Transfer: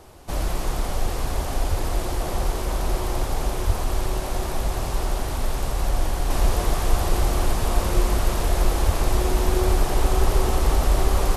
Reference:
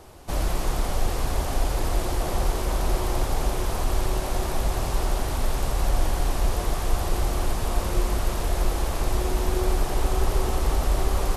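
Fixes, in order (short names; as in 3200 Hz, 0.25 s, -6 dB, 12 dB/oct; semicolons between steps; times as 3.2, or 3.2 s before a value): de-plosive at 1.69/3.66/8.85/9.65; gain 0 dB, from 6.3 s -3.5 dB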